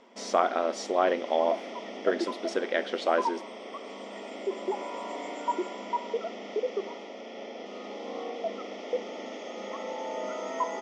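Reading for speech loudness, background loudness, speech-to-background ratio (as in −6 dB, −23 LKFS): −29.0 LKFS, −36.0 LKFS, 7.0 dB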